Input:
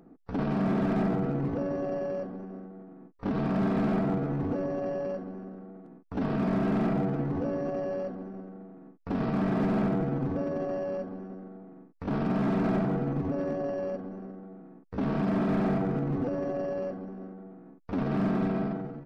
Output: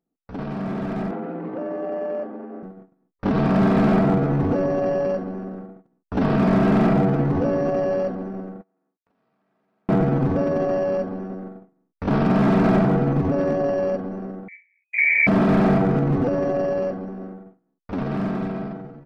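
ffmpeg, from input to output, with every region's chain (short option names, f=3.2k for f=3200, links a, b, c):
-filter_complex "[0:a]asettb=1/sr,asplit=3[a][b][c];[a]atrim=end=1.114[d];[b]atrim=start=1.11:end=2.63,asetpts=PTS-STARTPTS,afade=t=in:d=0.004:c=qsin,afade=t=out:st=1.516:d=0.004:c=qsin,highpass=190,lowpass=2.6k,afreqshift=31[e];[c]atrim=start=2.626[f];[d][e]acrossfade=d=0.004:c1=hsin:c2=qsin[g];[g][f]acrossfade=d=0.004:c1=qsin:c2=hsin,asettb=1/sr,asplit=3[h][i][j];[h]atrim=end=8.614[k];[i]atrim=start=8.61:end=9.89,asetpts=PTS-STARTPTS,afade=t=in:d=0.004:c=qsin,afade=t=out:st=1.276:d=0.004:c=qsin,highpass=f=620:p=1,acompressor=threshold=-50dB:ratio=10:attack=3.2:release=140:knee=1:detection=peak[l];[j]atrim=start=9.886[m];[k][l]acrossfade=d=0.004:c1=hsin:c2=qsin[n];[n][m]acrossfade=d=0.004:c1=qsin:c2=hsin,asettb=1/sr,asplit=3[o][p][q];[o]atrim=end=14.484[r];[p]atrim=start=14.48:end=15.27,asetpts=PTS-STARTPTS,afade=t=in:d=0.004:c=qsin,afade=t=out:st=0.786:d=0.004:c=qsin,asuperstop=centerf=1200:order=4:qfactor=0.78,lowpass=f=2.1k:t=q:w=0.5098,lowpass=f=2.1k:t=q:w=0.6013,lowpass=f=2.1k:t=q:w=0.9,lowpass=f=2.1k:t=q:w=2.563,afreqshift=-2500[s];[q]atrim=start=15.266[t];[r][s]acrossfade=d=0.004:c1=hsin:c2=qsin[u];[u][t]acrossfade=d=0.004:c1=qsin:c2=hsin,agate=range=-27dB:threshold=-44dB:ratio=16:detection=peak,equalizer=f=280:t=o:w=0.77:g=-2.5,dynaudnorm=f=640:g=7:m=10.5dB"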